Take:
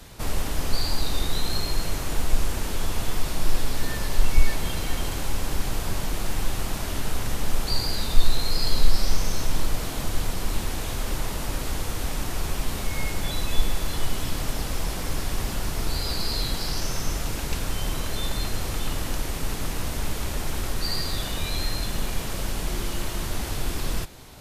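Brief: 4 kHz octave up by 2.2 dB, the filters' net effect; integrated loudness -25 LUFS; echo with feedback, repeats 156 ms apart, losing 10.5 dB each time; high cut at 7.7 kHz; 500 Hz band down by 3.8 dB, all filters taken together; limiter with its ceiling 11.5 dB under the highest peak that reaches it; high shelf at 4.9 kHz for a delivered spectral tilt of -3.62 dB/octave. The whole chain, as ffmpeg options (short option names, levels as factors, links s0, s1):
-af "lowpass=7700,equalizer=f=500:t=o:g=-5,equalizer=f=4000:t=o:g=5,highshelf=f=4900:g=-4.5,alimiter=limit=0.211:level=0:latency=1,aecho=1:1:156|312|468:0.299|0.0896|0.0269,volume=1.78"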